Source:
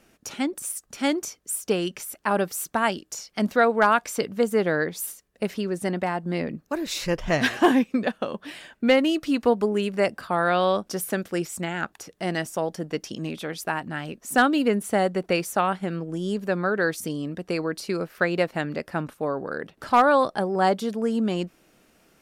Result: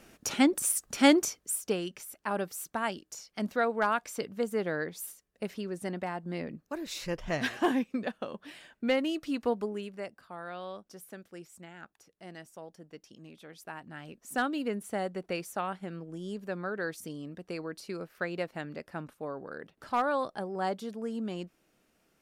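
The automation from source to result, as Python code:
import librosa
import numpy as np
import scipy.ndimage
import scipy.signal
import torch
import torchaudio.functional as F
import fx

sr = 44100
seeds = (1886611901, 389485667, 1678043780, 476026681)

y = fx.gain(x, sr, db=fx.line((1.17, 3.0), (1.85, -9.0), (9.56, -9.0), (10.16, -19.5), (13.28, -19.5), (14.19, -11.0)))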